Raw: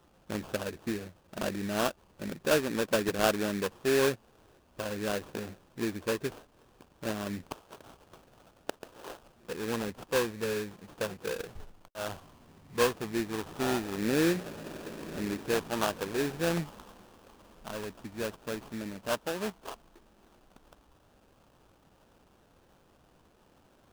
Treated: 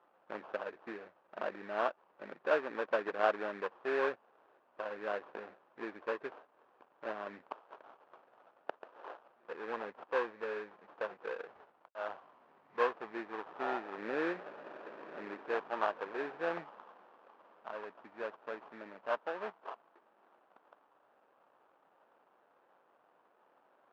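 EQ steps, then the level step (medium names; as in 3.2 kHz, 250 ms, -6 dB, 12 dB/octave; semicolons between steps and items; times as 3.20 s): high-pass 650 Hz 12 dB/octave; low-pass 1.5 kHz 12 dB/octave; distance through air 53 m; +1.0 dB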